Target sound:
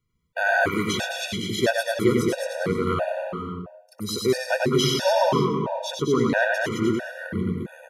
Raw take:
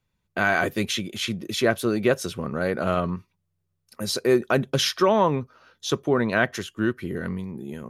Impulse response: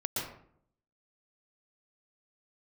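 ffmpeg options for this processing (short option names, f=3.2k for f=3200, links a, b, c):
-filter_complex "[0:a]aecho=1:1:96.21|215.7:0.708|0.562,asplit=2[a][b];[1:a]atrim=start_sample=2205,asetrate=26901,aresample=44100,adelay=109[c];[b][c]afir=irnorm=-1:irlink=0,volume=-14dB[d];[a][d]amix=inputs=2:normalize=0,afftfilt=real='re*gt(sin(2*PI*1.5*pts/sr)*(1-2*mod(floor(b*sr/1024/480),2)),0)':imag='im*gt(sin(2*PI*1.5*pts/sr)*(1-2*mod(floor(b*sr/1024/480),2)),0)':win_size=1024:overlap=0.75"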